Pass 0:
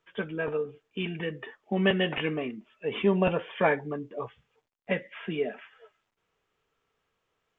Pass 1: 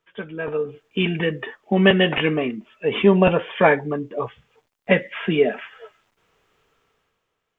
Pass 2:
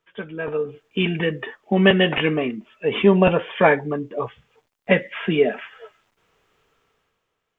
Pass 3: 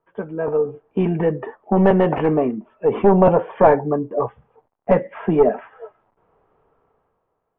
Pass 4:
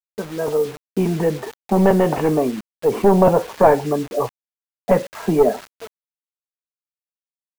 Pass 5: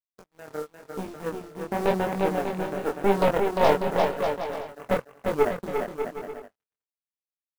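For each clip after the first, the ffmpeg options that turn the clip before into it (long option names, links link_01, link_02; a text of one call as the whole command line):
ffmpeg -i in.wav -af "dynaudnorm=framelen=110:gausssize=13:maxgain=13dB" out.wav
ffmpeg -i in.wav -af anull out.wav
ffmpeg -i in.wav -af "aeval=exprs='0.891*(cos(1*acos(clip(val(0)/0.891,-1,1)))-cos(1*PI/2))+0.112*(cos(3*acos(clip(val(0)/0.891,-1,1)))-cos(3*PI/2))+0.0708*(cos(5*acos(clip(val(0)/0.891,-1,1)))-cos(5*PI/2))+0.224*(cos(6*acos(clip(val(0)/0.891,-1,1)))-cos(6*PI/2))+0.126*(cos(8*acos(clip(val(0)/0.891,-1,1)))-cos(8*PI/2))':channel_layout=same,acontrast=74,lowpass=frequency=860:width_type=q:width=1.7,volume=-3.5dB" out.wav
ffmpeg -i in.wav -af "acrusher=bits=5:mix=0:aa=0.000001" out.wav
ffmpeg -i in.wav -filter_complex "[0:a]aeval=exprs='0.841*(cos(1*acos(clip(val(0)/0.841,-1,1)))-cos(1*PI/2))+0.0075*(cos(3*acos(clip(val(0)/0.841,-1,1)))-cos(3*PI/2))+0.119*(cos(7*acos(clip(val(0)/0.841,-1,1)))-cos(7*PI/2))':channel_layout=same,asplit=2[link_01][link_02];[link_02]aecho=0:1:350|595|766.5|886.6|970.6:0.631|0.398|0.251|0.158|0.1[link_03];[link_01][link_03]amix=inputs=2:normalize=0,flanger=delay=20:depth=6.6:speed=0.94,volume=-5dB" out.wav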